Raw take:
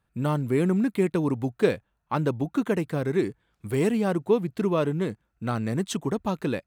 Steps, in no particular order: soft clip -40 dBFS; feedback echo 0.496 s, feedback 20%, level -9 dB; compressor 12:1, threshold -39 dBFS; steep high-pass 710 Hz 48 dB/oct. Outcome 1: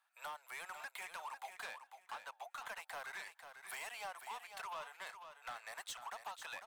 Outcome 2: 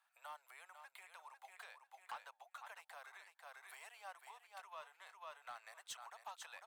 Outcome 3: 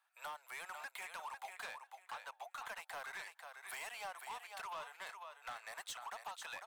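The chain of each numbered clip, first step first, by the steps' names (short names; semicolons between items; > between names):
steep high-pass > compressor > soft clip > feedback echo; feedback echo > compressor > steep high-pass > soft clip; steep high-pass > compressor > feedback echo > soft clip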